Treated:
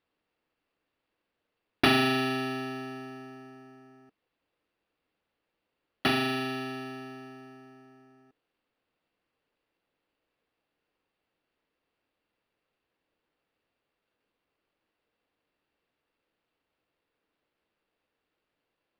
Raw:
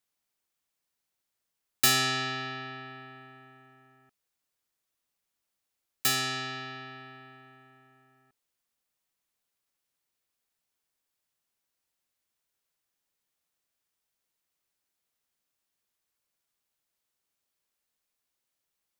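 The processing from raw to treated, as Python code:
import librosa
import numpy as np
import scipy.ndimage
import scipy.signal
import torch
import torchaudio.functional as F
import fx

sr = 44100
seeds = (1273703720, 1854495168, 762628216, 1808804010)

y = fx.small_body(x, sr, hz=(310.0, 460.0, 2700.0), ring_ms=25, db=14)
y = np.interp(np.arange(len(y)), np.arange(len(y))[::6], y[::6])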